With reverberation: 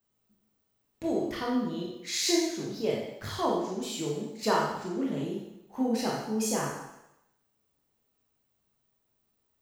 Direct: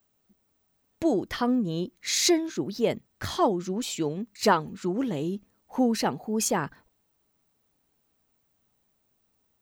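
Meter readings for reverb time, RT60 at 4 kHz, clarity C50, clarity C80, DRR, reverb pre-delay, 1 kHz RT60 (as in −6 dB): 0.90 s, 0.90 s, 1.5 dB, 5.0 dB, −4.0 dB, 17 ms, 0.90 s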